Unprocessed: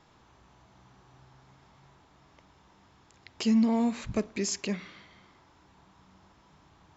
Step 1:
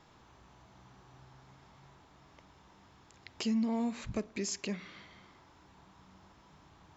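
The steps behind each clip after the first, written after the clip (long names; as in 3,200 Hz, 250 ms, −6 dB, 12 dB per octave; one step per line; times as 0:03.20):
downward compressor 1.5 to 1, threshold −42 dBFS, peak gain reduction 8 dB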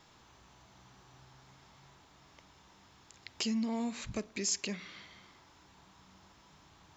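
high-shelf EQ 2,300 Hz +9 dB
level −2.5 dB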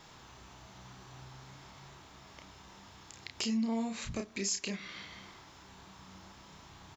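downward compressor 1.5 to 1, threshold −51 dBFS, peak gain reduction 8 dB
double-tracking delay 31 ms −5 dB
level +5.5 dB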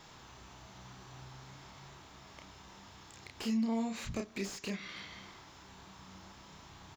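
slew-rate limiting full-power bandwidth 33 Hz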